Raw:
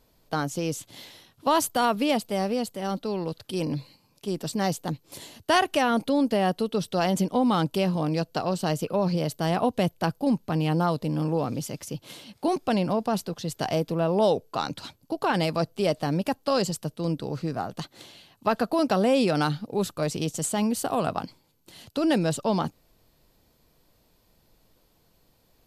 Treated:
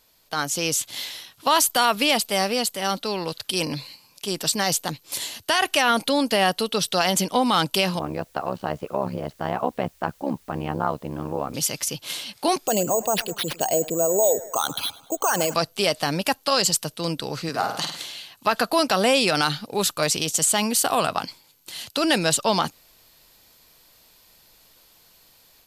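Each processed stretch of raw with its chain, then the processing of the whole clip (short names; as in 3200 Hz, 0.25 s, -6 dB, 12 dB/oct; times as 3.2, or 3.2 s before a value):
7.99–11.54 LPF 1300 Hz + AM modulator 69 Hz, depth 85% + requantised 12-bit, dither triangular
12.67–15.54 formant sharpening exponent 2 + tape echo 0.103 s, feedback 56%, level -18 dB, low-pass 3500 Hz + careless resampling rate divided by 6×, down none, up hold
17.49–17.97 HPF 140 Hz + flutter echo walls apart 8.7 m, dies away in 0.6 s
whole clip: tilt shelf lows -8.5 dB, about 810 Hz; limiter -14.5 dBFS; AGC gain up to 6 dB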